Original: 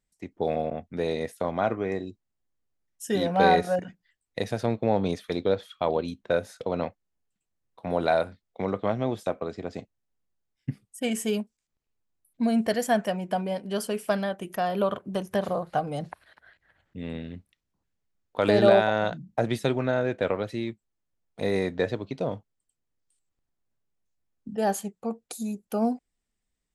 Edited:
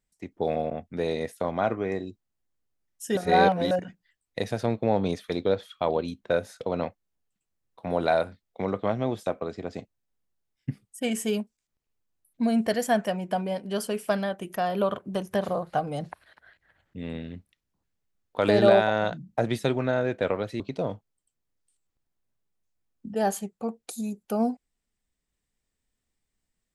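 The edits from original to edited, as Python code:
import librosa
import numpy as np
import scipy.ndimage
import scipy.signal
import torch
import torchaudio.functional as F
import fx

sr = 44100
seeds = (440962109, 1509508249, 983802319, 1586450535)

y = fx.edit(x, sr, fx.reverse_span(start_s=3.17, length_s=0.54),
    fx.cut(start_s=20.6, length_s=1.42), tone=tone)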